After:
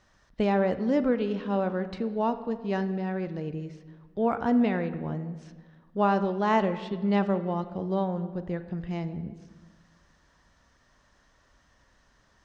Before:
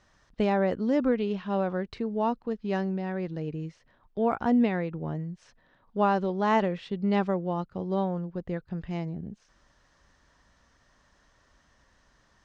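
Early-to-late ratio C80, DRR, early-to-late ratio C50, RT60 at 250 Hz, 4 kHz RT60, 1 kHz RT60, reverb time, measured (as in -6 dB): 14.0 dB, 11.0 dB, 12.0 dB, 1.8 s, 1.1 s, 1.4 s, 1.5 s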